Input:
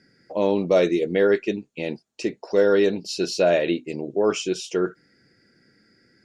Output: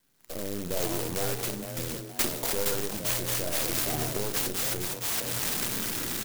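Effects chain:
gain on one half-wave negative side −7 dB
camcorder AGC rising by 33 dB per second
low-shelf EQ 82 Hz +11 dB
double-tracking delay 34 ms −9 dB
in parallel at −5 dB: fuzz pedal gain 43 dB, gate −41 dBFS
on the sum: first-order pre-emphasis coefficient 0.9
notch filter 4,400 Hz, Q 6.7
on a send: echo with shifted repeats 466 ms, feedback 34%, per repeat +120 Hz, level −4.5 dB
on the sum: rotating-speaker cabinet horn 0.7 Hz
converter with an unsteady clock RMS 0.13 ms
level +3.5 dB

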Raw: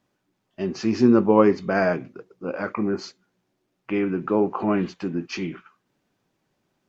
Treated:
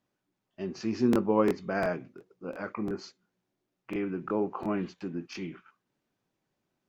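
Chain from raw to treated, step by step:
regular buffer underruns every 0.35 s, samples 1,024, repeat, from 0:00.76
level −8.5 dB

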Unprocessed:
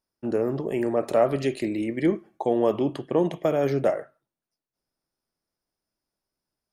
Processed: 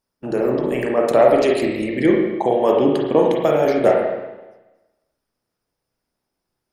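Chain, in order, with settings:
harmonic and percussive parts rebalanced percussive +9 dB
spring reverb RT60 1.1 s, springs 32/40/47 ms, chirp 25 ms, DRR −1 dB
level −1 dB

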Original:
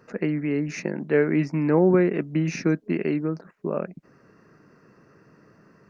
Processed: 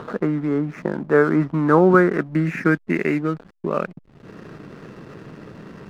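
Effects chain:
dynamic equaliser 1,300 Hz, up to +8 dB, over −46 dBFS, Q 2.2
upward compression, threshold −28 dBFS
low-pass filter sweep 1,200 Hz → 3,000 Hz, 0:01.44–0:04.09
slack as between gear wheels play −38.5 dBFS
level +3 dB

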